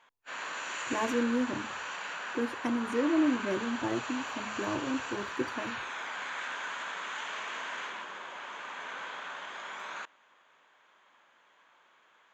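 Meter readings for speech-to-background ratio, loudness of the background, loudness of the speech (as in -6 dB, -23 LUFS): 5.0 dB, -38.0 LUFS, -33.0 LUFS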